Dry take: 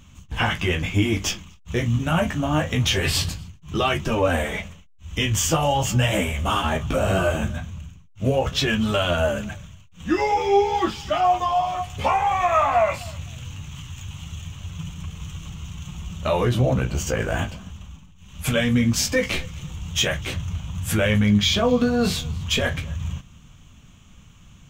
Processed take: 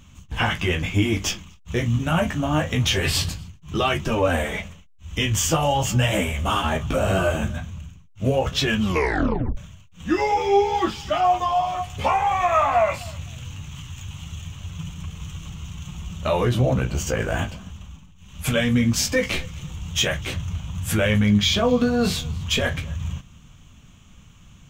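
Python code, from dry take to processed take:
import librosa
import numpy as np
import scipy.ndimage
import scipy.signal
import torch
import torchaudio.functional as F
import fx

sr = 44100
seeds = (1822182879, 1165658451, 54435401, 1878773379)

y = fx.edit(x, sr, fx.tape_stop(start_s=8.81, length_s=0.76), tone=tone)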